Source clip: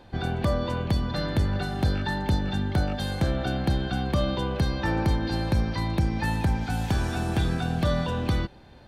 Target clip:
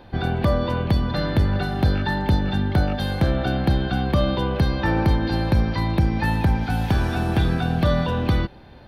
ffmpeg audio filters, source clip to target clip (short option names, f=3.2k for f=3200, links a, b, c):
-af "equalizer=f=7.5k:t=o:w=0.79:g=-12.5,volume=5dB"